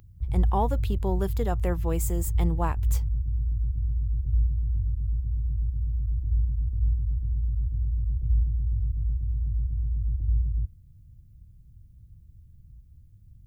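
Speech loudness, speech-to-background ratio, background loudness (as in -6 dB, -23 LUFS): -31.5 LUFS, -3.0 dB, -28.5 LUFS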